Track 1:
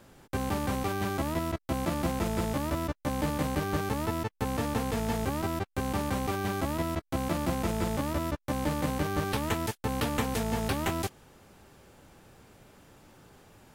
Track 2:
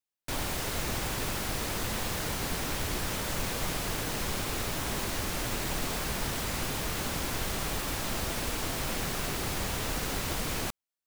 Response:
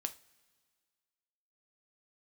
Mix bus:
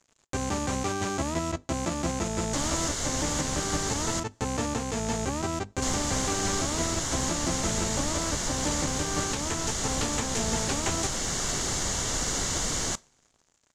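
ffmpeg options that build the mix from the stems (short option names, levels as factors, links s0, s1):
-filter_complex "[0:a]bandreject=f=50:t=h:w=6,bandreject=f=100:t=h:w=6,bandreject=f=150:t=h:w=6,bandreject=f=200:t=h:w=6,bandreject=f=250:t=h:w=6,aeval=exprs='sgn(val(0))*max(abs(val(0))-0.00299,0)':c=same,volume=1.06,asplit=2[s0][s1];[s1]volume=0.266[s2];[1:a]bandreject=f=2500:w=6.1,adelay=2250,volume=0.891,asplit=3[s3][s4][s5];[s3]atrim=end=4.2,asetpts=PTS-STARTPTS,afade=t=out:st=4.196:d=0.004:c=hsin[s6];[s4]atrim=start=4.2:end=5.82,asetpts=PTS-STARTPTS,volume=0[s7];[s5]atrim=start=5.82,asetpts=PTS-STARTPTS,afade=t=in:d=0.004:c=hsin[s8];[s6][s7][s8]concat=n=3:v=0:a=1,asplit=2[s9][s10];[s10]volume=0.376[s11];[2:a]atrim=start_sample=2205[s12];[s2][s11]amix=inputs=2:normalize=0[s13];[s13][s12]afir=irnorm=-1:irlink=0[s14];[s0][s9][s14]amix=inputs=3:normalize=0,lowpass=f=6900:t=q:w=4.7,alimiter=limit=0.15:level=0:latency=1:release=426"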